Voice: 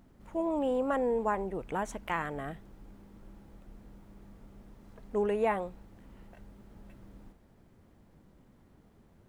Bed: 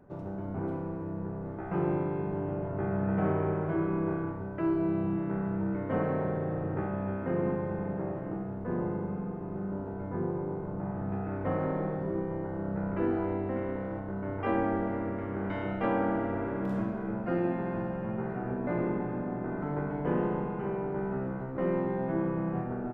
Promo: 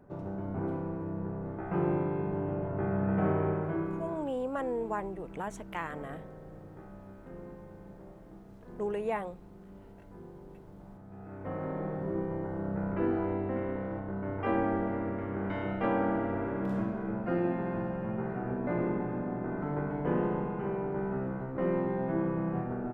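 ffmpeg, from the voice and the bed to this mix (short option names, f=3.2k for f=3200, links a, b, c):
-filter_complex "[0:a]adelay=3650,volume=-4dB[a];[1:a]volume=16dB,afade=t=out:st=3.47:d=0.87:silence=0.149624,afade=t=in:st=11.09:d=1.11:silence=0.158489[b];[a][b]amix=inputs=2:normalize=0"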